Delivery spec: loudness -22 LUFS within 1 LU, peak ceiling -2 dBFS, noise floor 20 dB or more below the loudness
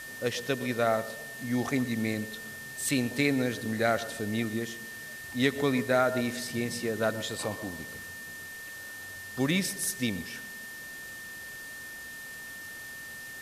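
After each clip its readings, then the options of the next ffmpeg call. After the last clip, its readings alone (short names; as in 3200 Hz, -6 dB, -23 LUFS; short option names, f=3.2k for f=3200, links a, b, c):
steady tone 1800 Hz; tone level -41 dBFS; noise floor -43 dBFS; noise floor target -52 dBFS; loudness -31.5 LUFS; peak -12.0 dBFS; loudness target -22.0 LUFS
-> -af "bandreject=f=1.8k:w=30"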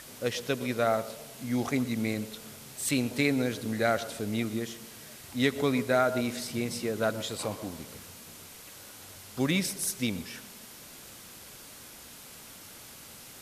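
steady tone none; noise floor -49 dBFS; noise floor target -51 dBFS
-> -af "afftdn=nr=6:nf=-49"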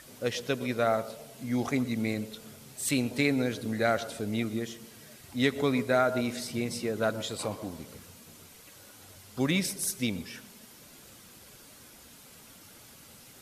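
noise floor -53 dBFS; loudness -30.5 LUFS; peak -12.5 dBFS; loudness target -22.0 LUFS
-> -af "volume=8.5dB"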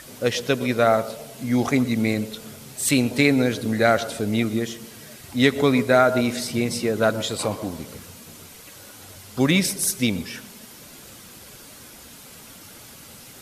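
loudness -22.0 LUFS; peak -4.0 dBFS; noise floor -44 dBFS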